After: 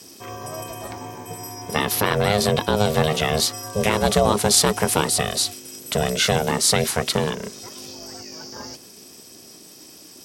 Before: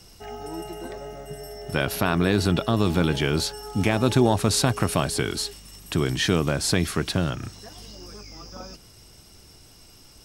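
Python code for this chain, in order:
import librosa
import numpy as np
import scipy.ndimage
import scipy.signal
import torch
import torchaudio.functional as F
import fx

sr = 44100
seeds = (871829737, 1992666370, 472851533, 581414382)

y = x * np.sin(2.0 * np.pi * 310.0 * np.arange(len(x)) / sr)
y = scipy.signal.sosfilt(scipy.signal.butter(2, 87.0, 'highpass', fs=sr, output='sos'), y)
y = fx.high_shelf(y, sr, hz=4500.0, db=8.5)
y = y * librosa.db_to_amplitude(5.0)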